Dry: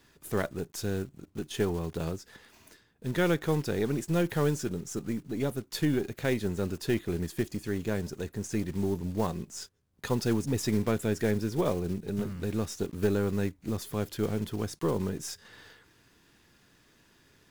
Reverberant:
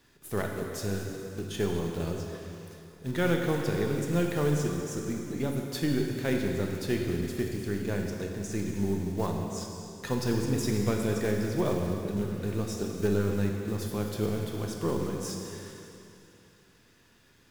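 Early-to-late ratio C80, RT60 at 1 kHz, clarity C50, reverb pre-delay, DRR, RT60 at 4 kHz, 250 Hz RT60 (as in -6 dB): 3.5 dB, 2.8 s, 2.5 dB, 6 ms, 1.0 dB, 2.6 s, 2.8 s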